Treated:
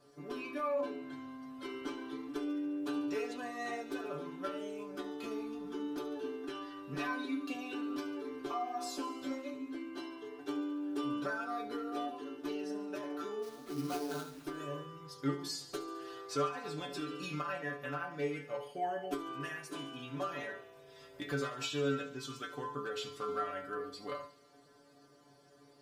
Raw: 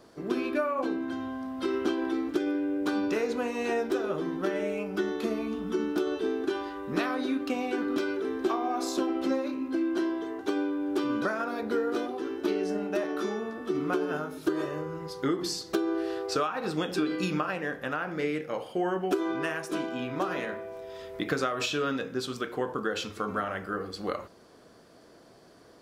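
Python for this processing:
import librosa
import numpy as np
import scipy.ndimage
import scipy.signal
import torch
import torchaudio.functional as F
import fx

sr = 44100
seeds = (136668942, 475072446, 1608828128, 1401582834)

y = fx.clip_asym(x, sr, top_db=-21.5, bottom_db=-19.0)
y = fx.stiff_resonator(y, sr, f0_hz=140.0, decay_s=0.32, stiffness=0.002)
y = fx.sample_hold(y, sr, seeds[0], rate_hz=5300.0, jitter_pct=20, at=(13.42, 14.43), fade=0.02)
y = fx.echo_wet_highpass(y, sr, ms=71, feedback_pct=72, hz=2900.0, wet_db=-14.0)
y = y * 10.0 ** (4.0 / 20.0)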